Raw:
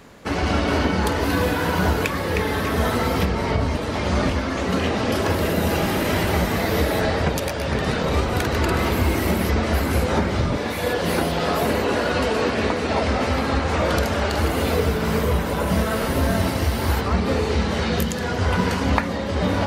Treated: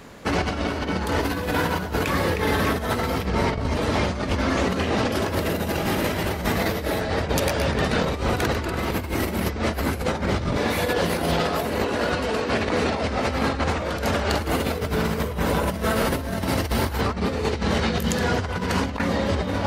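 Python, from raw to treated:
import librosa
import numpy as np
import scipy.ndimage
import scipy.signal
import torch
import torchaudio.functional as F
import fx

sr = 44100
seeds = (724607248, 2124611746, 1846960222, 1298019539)

y = fx.over_compress(x, sr, threshold_db=-23.0, ratio=-0.5)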